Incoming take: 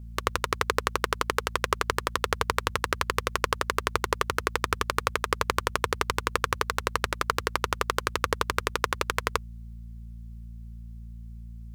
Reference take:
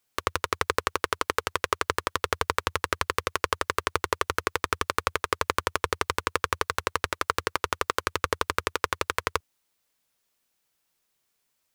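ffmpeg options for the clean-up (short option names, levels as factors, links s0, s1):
-af "bandreject=f=57:t=h:w=4,bandreject=f=114:t=h:w=4,bandreject=f=171:t=h:w=4,bandreject=f=228:t=h:w=4"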